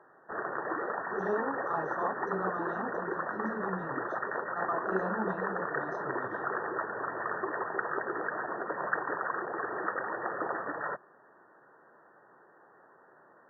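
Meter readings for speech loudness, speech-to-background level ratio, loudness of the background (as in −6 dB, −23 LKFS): −38.0 LKFS, −3.5 dB, −34.5 LKFS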